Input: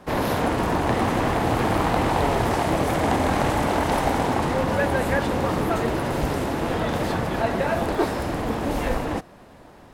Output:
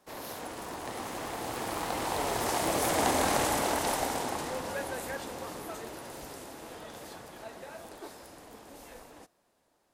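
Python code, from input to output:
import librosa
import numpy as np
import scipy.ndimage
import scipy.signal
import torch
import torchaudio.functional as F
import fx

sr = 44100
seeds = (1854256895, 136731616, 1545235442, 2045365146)

y = fx.doppler_pass(x, sr, speed_mps=7, closest_m=4.7, pass_at_s=3.16)
y = fx.bass_treble(y, sr, bass_db=-9, treble_db=12)
y = F.gain(torch.from_numpy(y), -4.5).numpy()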